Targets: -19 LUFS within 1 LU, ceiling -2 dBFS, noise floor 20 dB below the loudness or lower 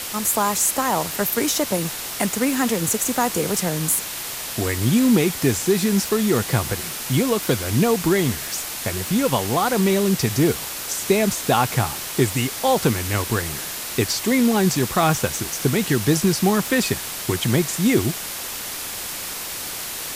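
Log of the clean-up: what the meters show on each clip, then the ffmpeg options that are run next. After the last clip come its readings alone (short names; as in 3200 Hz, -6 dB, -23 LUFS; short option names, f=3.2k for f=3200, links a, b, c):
noise floor -31 dBFS; noise floor target -41 dBFS; loudness -21.0 LUFS; peak -4.5 dBFS; loudness target -19.0 LUFS
-> -af "afftdn=nr=10:nf=-31"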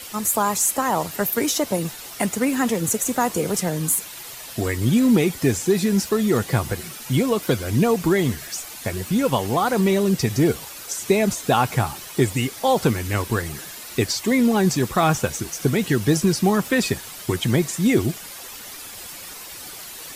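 noise floor -38 dBFS; noise floor target -42 dBFS
-> -af "afftdn=nr=6:nf=-38"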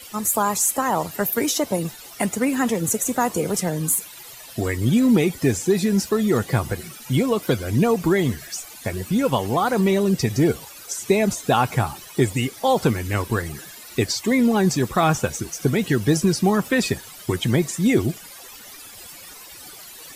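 noise floor -41 dBFS; noise floor target -42 dBFS
-> -af "afftdn=nr=6:nf=-41"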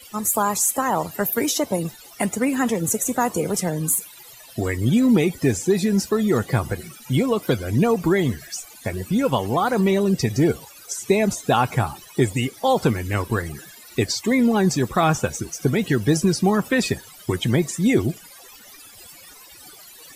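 noise floor -45 dBFS; loudness -21.5 LUFS; peak -5.5 dBFS; loudness target -19.0 LUFS
-> -af "volume=2.5dB"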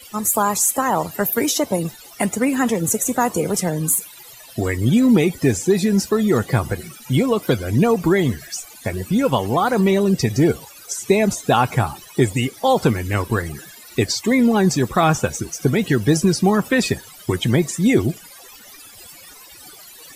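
loudness -19.0 LUFS; peak -3.0 dBFS; noise floor -43 dBFS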